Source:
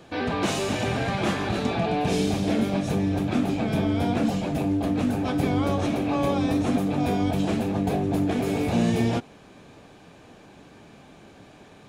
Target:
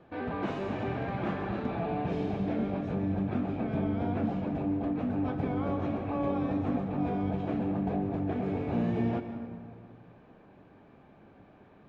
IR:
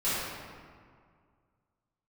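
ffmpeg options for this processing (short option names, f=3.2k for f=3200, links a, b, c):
-filter_complex "[0:a]lowpass=1.8k,asplit=2[a][b];[1:a]atrim=start_sample=2205,adelay=124[c];[b][c]afir=irnorm=-1:irlink=0,volume=-18.5dB[d];[a][d]amix=inputs=2:normalize=0,volume=-7.5dB"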